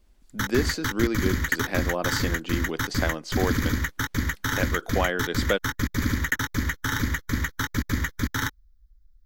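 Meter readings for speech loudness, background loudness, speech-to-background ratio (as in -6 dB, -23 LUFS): -29.5 LUFS, -27.5 LUFS, -2.0 dB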